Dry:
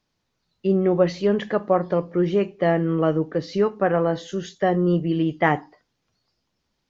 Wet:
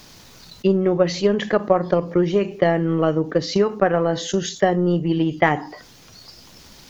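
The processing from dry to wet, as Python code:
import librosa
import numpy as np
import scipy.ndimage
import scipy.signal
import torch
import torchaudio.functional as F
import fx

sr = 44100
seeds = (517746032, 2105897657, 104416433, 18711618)

y = fx.high_shelf(x, sr, hz=5400.0, db=11.0)
y = fx.transient(y, sr, attack_db=10, sustain_db=-4)
y = fx.env_flatten(y, sr, amount_pct=50)
y = y * 10.0 ** (-6.0 / 20.0)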